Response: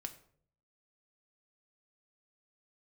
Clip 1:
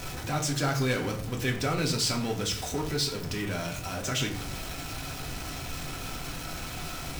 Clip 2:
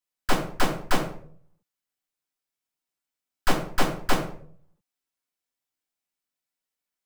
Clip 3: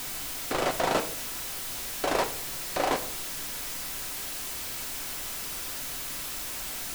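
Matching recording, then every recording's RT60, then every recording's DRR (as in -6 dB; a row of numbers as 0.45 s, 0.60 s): 3; 0.60 s, 0.60 s, 0.60 s; 0.5 dB, -3.5 dB, 6.0 dB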